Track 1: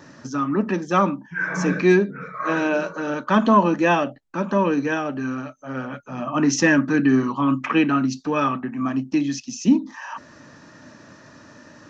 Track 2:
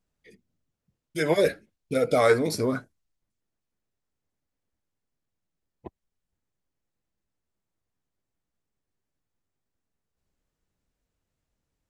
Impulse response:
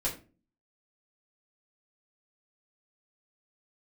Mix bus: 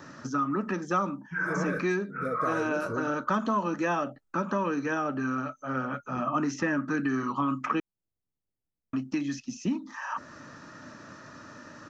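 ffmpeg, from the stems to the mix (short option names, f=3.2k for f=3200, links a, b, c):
-filter_complex "[0:a]equalizer=f=1.3k:t=o:w=0.31:g=9,volume=-2dB,asplit=3[a][b][c];[a]atrim=end=7.8,asetpts=PTS-STARTPTS,afade=t=out:st=7.796:d=0.004:c=hsin[d];[b]atrim=start=7.8:end=8.93,asetpts=PTS-STARTPTS,volume=0[e];[c]atrim=start=8.93,asetpts=PTS-STARTPTS,afade=t=in:d=0.004:c=hsin[f];[d][e][f]concat=n=3:v=0:a=1[g];[1:a]tiltshelf=f=970:g=8,adelay=300,volume=-12.5dB[h];[g][h]amix=inputs=2:normalize=0,acrossover=split=1100|2400|4800[i][j][k][l];[i]acompressor=threshold=-28dB:ratio=4[m];[j]acompressor=threshold=-35dB:ratio=4[n];[k]acompressor=threshold=-59dB:ratio=4[o];[l]acompressor=threshold=-48dB:ratio=4[p];[m][n][o][p]amix=inputs=4:normalize=0"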